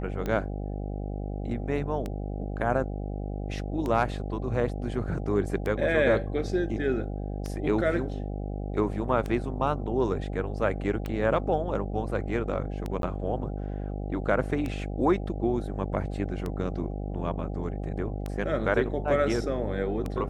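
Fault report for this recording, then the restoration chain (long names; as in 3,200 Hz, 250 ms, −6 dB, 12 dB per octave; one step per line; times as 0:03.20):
mains buzz 50 Hz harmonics 16 −33 dBFS
scratch tick 33 1/3 rpm −19 dBFS
0:13.02–0:13.03: drop-out 12 ms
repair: click removal
hum removal 50 Hz, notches 16
repair the gap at 0:13.02, 12 ms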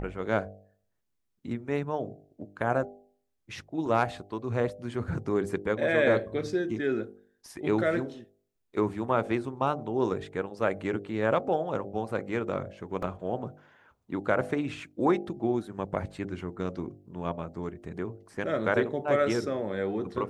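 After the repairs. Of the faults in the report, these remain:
none of them is left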